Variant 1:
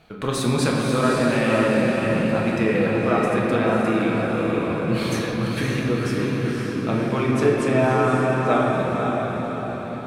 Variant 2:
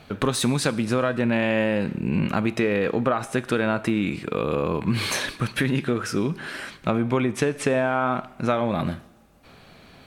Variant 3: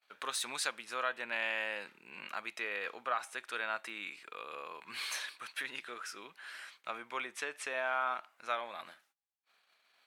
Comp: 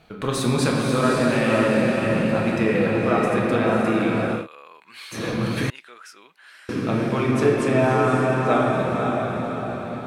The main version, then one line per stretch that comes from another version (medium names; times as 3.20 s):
1
4.40–5.19 s: from 3, crossfade 0.16 s
5.70–6.69 s: from 3
not used: 2